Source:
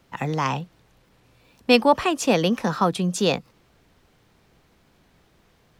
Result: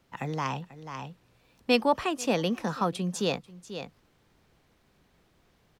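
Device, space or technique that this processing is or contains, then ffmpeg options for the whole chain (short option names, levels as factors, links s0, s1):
ducked delay: -filter_complex "[0:a]asplit=3[s0][s1][s2];[s1]adelay=489,volume=0.562[s3];[s2]apad=whole_len=277066[s4];[s3][s4]sidechaincompress=threshold=0.01:ratio=6:attack=34:release=390[s5];[s0][s5]amix=inputs=2:normalize=0,volume=0.447"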